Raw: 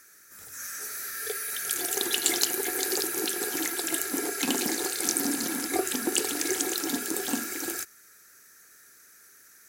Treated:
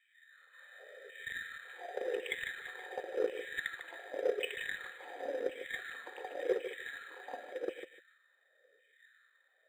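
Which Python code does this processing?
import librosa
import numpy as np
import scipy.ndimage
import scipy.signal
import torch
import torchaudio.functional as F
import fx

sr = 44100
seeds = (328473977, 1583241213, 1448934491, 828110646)

y = fx.filter_lfo_highpass(x, sr, shape='saw_down', hz=0.91, low_hz=420.0, high_hz=2700.0, q=5.2)
y = fx.formant_cascade(y, sr, vowel='e')
y = fx.cheby_harmonics(y, sr, harmonics=(7,), levels_db=(-26,), full_scale_db=-24.0)
y = fx.echo_feedback(y, sr, ms=150, feedback_pct=16, wet_db=-10.5)
y = np.interp(np.arange(len(y)), np.arange(len(y))[::8], y[::8])
y = y * librosa.db_to_amplitude(5.5)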